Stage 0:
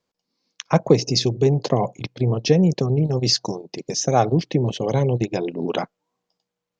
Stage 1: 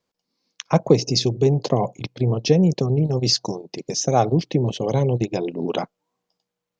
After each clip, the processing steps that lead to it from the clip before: dynamic bell 1.7 kHz, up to -5 dB, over -44 dBFS, Q 1.9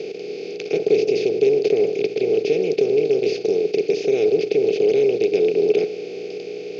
spectral levelling over time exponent 0.2; two resonant band-passes 990 Hz, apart 2.5 oct

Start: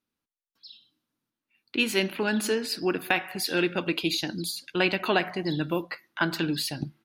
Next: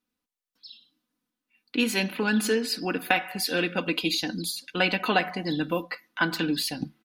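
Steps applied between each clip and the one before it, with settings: comb 4 ms, depth 60%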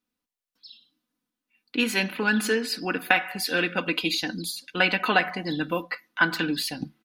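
dynamic bell 1.6 kHz, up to +6 dB, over -38 dBFS, Q 0.9; trim -1 dB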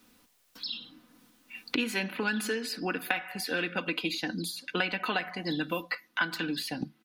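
three bands compressed up and down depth 100%; trim -7 dB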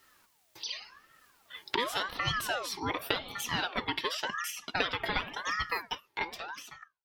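fade out at the end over 1.31 s; ring modulator with a swept carrier 1.1 kHz, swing 45%, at 0.89 Hz; trim +1.5 dB

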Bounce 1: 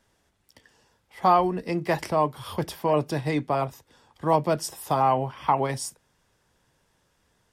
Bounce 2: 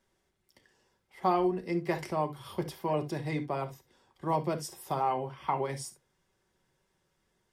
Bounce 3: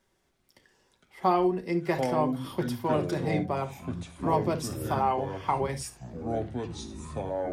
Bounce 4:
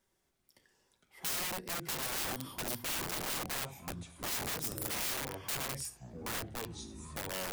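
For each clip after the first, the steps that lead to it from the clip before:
small resonant body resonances 360/2100 Hz, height 7 dB; reverberation, pre-delay 5 ms, DRR 7 dB; trim -9 dB
ever faster or slower copies 224 ms, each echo -6 st, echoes 3, each echo -6 dB; trim +3 dB
integer overflow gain 27 dB; treble shelf 7.5 kHz +10 dB; trim -7.5 dB

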